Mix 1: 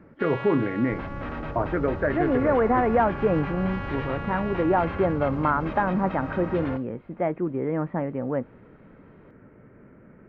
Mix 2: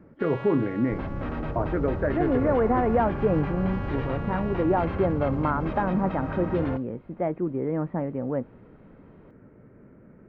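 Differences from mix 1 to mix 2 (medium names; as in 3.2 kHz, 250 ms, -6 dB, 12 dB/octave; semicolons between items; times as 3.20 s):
second sound +3.5 dB; master: add peaking EQ 2.2 kHz -6 dB 2.6 oct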